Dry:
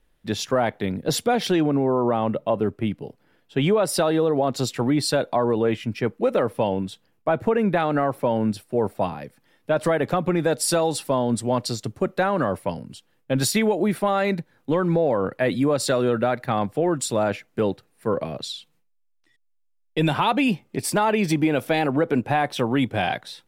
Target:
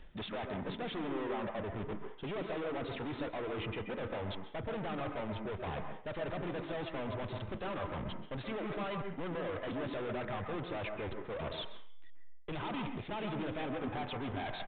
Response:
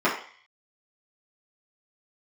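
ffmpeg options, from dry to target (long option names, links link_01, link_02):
-filter_complex "[0:a]asubboost=boost=7.5:cutoff=61,areverse,acompressor=threshold=-35dB:ratio=20,areverse,aeval=exprs='(tanh(355*val(0)+0.15)-tanh(0.15))/355':channel_layout=same,atempo=1.6,asplit=2[link_01][link_02];[1:a]atrim=start_sample=2205,adelay=125[link_03];[link_02][link_03]afir=irnorm=-1:irlink=0,volume=-21.5dB[link_04];[link_01][link_04]amix=inputs=2:normalize=0,aresample=8000,aresample=44100,volume=13.5dB"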